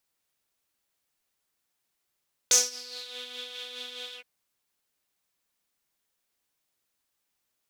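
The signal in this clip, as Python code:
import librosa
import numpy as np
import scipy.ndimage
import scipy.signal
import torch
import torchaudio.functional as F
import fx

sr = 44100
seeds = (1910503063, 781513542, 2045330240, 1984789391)

y = fx.sub_patch_tremolo(sr, seeds[0], note=71, wave='triangle', wave2='saw', interval_st=-12, detune_cents=13, level2_db=-5.5, sub_db=-15.0, noise_db=-13, kind='bandpass', cutoff_hz=2300.0, q=6.4, env_oct=1.5, env_decay_s=0.66, env_sustain_pct=40, attack_ms=1.3, decay_s=0.19, sustain_db=-22, release_s=0.08, note_s=1.64, lfo_hz=4.8, tremolo_db=5.0)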